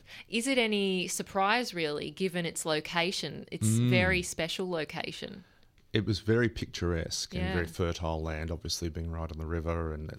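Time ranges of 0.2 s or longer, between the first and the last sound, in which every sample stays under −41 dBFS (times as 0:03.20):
0:05.39–0:05.94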